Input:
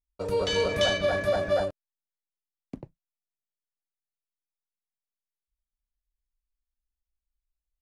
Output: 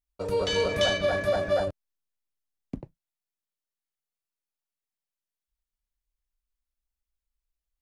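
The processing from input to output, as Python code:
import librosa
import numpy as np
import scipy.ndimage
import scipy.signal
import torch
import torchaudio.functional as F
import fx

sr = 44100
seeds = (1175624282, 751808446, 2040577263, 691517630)

y = fx.low_shelf(x, sr, hz=170.0, db=10.5, at=(1.67, 2.8))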